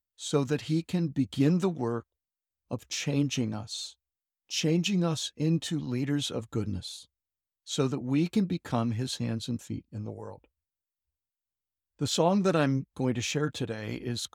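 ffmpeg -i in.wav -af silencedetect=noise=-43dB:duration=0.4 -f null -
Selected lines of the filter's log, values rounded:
silence_start: 2.00
silence_end: 2.71 | silence_duration: 0.71
silence_start: 3.90
silence_end: 4.51 | silence_duration: 0.60
silence_start: 7.03
silence_end: 7.67 | silence_duration: 0.64
silence_start: 10.36
silence_end: 12.00 | silence_duration: 1.64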